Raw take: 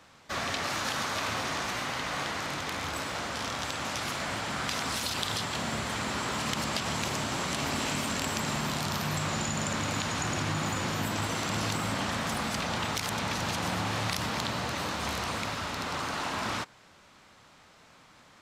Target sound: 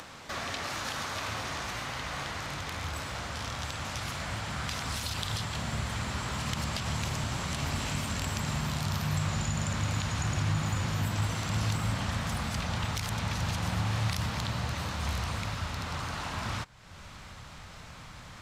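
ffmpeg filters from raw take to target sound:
ffmpeg -i in.wav -af "asubboost=boost=6:cutoff=120,acompressor=mode=upward:threshold=-31dB:ratio=2.5,volume=-3.5dB" out.wav

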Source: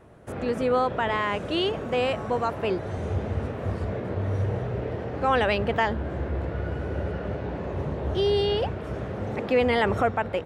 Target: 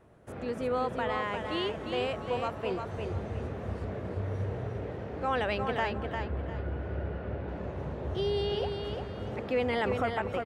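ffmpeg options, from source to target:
ffmpeg -i in.wav -filter_complex "[0:a]asettb=1/sr,asplit=3[link_01][link_02][link_03];[link_01]atrim=end=5.914[link_04];[link_02]atrim=start=5.91:end=7.48,asetpts=PTS-STARTPTS,afade=type=in:duration=0.004:curve=qsin,afade=type=out:start_time=1.566:duration=0.004:curve=qsin,lowpass=3500[link_05];[link_03]atrim=start=7.476[link_06];[link_04][link_05]acrossfade=duration=0.004:curve1=hsin:curve2=qsin[link_07];[link_07][link_06]acrossfade=duration=0.004:curve1=qsin:curve2=hsin,aecho=1:1:351|702|1053|1404:0.531|0.159|0.0478|0.0143,volume=-7.5dB" out.wav

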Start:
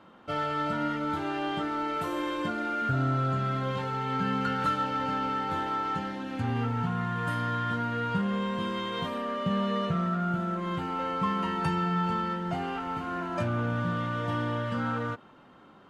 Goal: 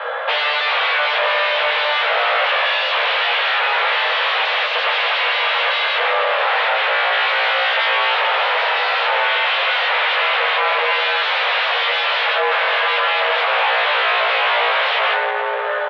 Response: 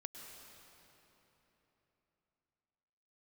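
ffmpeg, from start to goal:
-filter_complex "[0:a]asplit=2[link_01][link_02];[1:a]atrim=start_sample=2205[link_03];[link_02][link_03]afir=irnorm=-1:irlink=0,volume=-1.5dB[link_04];[link_01][link_04]amix=inputs=2:normalize=0,aeval=exprs='0.224*sin(PI/2*7.94*val(0)/0.224)':channel_layout=same,asplit=2[link_05][link_06];[link_06]adelay=17,volume=-3dB[link_07];[link_05][link_07]amix=inputs=2:normalize=0,asoftclip=type=hard:threshold=-19dB,highpass=frequency=170:width_type=q:width=0.5412,highpass=frequency=170:width_type=q:width=1.307,lowpass=frequency=3300:width_type=q:width=0.5176,lowpass=frequency=3300:width_type=q:width=0.7071,lowpass=frequency=3300:width_type=q:width=1.932,afreqshift=300,volume=4dB"

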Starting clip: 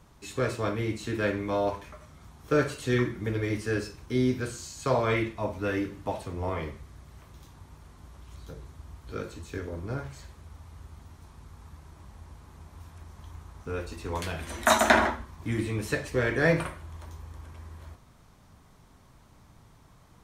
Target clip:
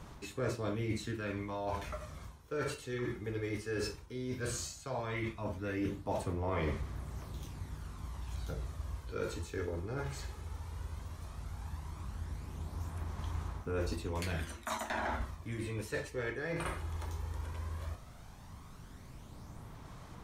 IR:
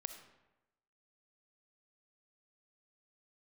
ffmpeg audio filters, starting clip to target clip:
-af "aeval=exprs='clip(val(0),-1,0.251)':channel_layout=same,areverse,acompressor=threshold=-37dB:ratio=20,areverse,aphaser=in_gain=1:out_gain=1:delay=2.4:decay=0.35:speed=0.15:type=sinusoidal,volume=3dB"

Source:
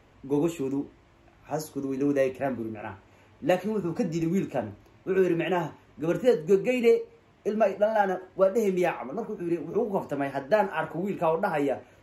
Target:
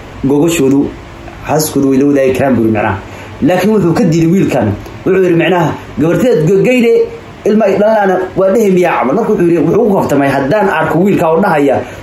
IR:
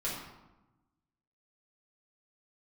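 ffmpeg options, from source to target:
-filter_complex "[0:a]asettb=1/sr,asplit=3[link_01][link_02][link_03];[link_01]atrim=end=8.914[link_04];[link_02]atrim=start=8.91:end=9.35,asetpts=PTS-STARTPTS,afade=type=in:duration=0.004:curve=qsin,afade=type=out:start_time=0.436:duration=0.004:curve=qsin,lowshelf=frequency=480:gain=-4.5[link_05];[link_03]atrim=start=9.346[link_06];[link_04][link_05]acrossfade=duration=0.004:curve1=hsin:curve2=qsin[link_07];[link_07][link_06]acrossfade=duration=0.004:curve1=qsin:curve2=hsin,alimiter=level_in=30.5dB:limit=-1dB:release=50:level=0:latency=1,volume=-1dB"

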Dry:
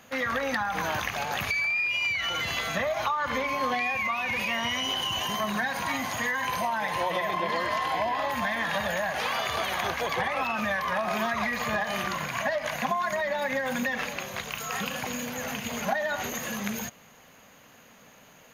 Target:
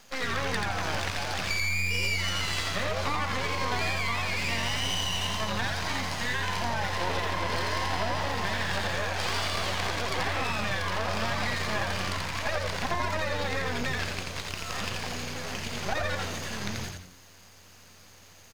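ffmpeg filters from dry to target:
ffmpeg -i in.wav -filter_complex "[0:a]acrossover=split=4900[link_01][link_02];[link_02]acompressor=threshold=-56dB:ratio=4:attack=1:release=60[link_03];[link_01][link_03]amix=inputs=2:normalize=0,equalizer=frequency=5000:width=2:gain=14.5,aeval=exprs='max(val(0),0)':channel_layout=same,asplit=5[link_04][link_05][link_06][link_07][link_08];[link_05]adelay=85,afreqshift=-91,volume=-3dB[link_09];[link_06]adelay=170,afreqshift=-182,volume=-12.9dB[link_10];[link_07]adelay=255,afreqshift=-273,volume=-22.8dB[link_11];[link_08]adelay=340,afreqshift=-364,volume=-32.7dB[link_12];[link_04][link_09][link_10][link_11][link_12]amix=inputs=5:normalize=0" out.wav

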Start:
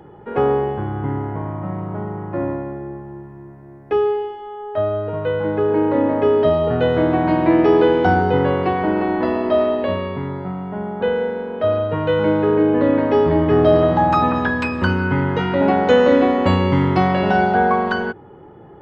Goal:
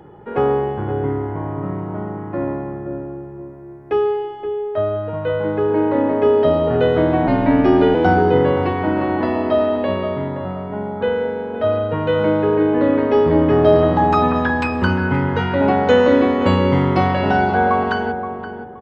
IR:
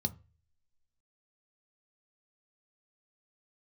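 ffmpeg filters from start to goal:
-filter_complex "[0:a]asplit=2[link_01][link_02];[link_02]adelay=523,lowpass=frequency=1200:poles=1,volume=-8dB,asplit=2[link_03][link_04];[link_04]adelay=523,lowpass=frequency=1200:poles=1,volume=0.28,asplit=2[link_05][link_06];[link_06]adelay=523,lowpass=frequency=1200:poles=1,volume=0.28[link_07];[link_01][link_03][link_05][link_07]amix=inputs=4:normalize=0,asettb=1/sr,asplit=3[link_08][link_09][link_10];[link_08]atrim=end=7.274[link_11];[link_09]atrim=start=7.27:end=7.95,asetpts=PTS-STARTPTS,afade=type=in:duration=0.004:curve=qsin,afade=type=out:start_time=0.676:duration=0.004:curve=qsin,afreqshift=-49[link_12];[link_10]atrim=start=7.946[link_13];[link_11][link_12]acrossfade=duration=0.004:curve1=hsin:curve2=qsin[link_14];[link_14][link_13]acrossfade=duration=0.004:curve1=qsin:curve2=hsin"

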